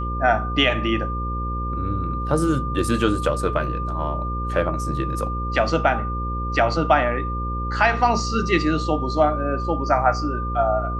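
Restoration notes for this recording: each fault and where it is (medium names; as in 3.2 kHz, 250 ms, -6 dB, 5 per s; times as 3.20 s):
buzz 60 Hz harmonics 9 -27 dBFS
whine 1.2 kHz -28 dBFS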